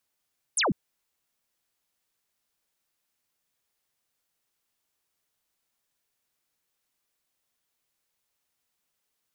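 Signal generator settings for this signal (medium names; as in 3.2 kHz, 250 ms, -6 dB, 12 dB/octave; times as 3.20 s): laser zap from 11 kHz, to 140 Hz, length 0.15 s sine, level -21.5 dB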